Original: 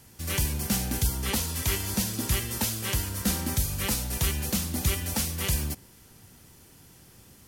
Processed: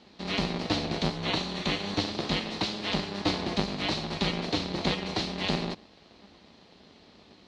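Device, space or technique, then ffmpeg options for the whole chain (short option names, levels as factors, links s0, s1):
ring modulator pedal into a guitar cabinet: -filter_complex "[0:a]aeval=exprs='val(0)*sgn(sin(2*PI*100*n/s))':c=same,highpass=81,equalizer=f=130:t=q:w=4:g=-10,equalizer=f=730:t=q:w=4:g=3,equalizer=f=1500:t=q:w=4:g=-5,equalizer=f=4100:t=q:w=4:g=9,lowpass=f=4300:w=0.5412,lowpass=f=4300:w=1.3066,asettb=1/sr,asplit=3[s0][s1][s2];[s0]atrim=end=1.164[s3];[s1]atrim=start=1.16:end=1.98,asetpts=PTS-STARTPTS,afade=t=in:d=0.004:c=qsin,afade=t=out:st=0.816:d=0.004:c=qsin,bandreject=f=5000:w=7.9[s4];[s2]atrim=start=1.976[s5];[s3][s4]acrossfade=d=0.004:c1=hsin:c2=qsin[s6];[s6][s5]acrossfade=d=0.004:c1=qsin:c2=hsin,volume=1.12"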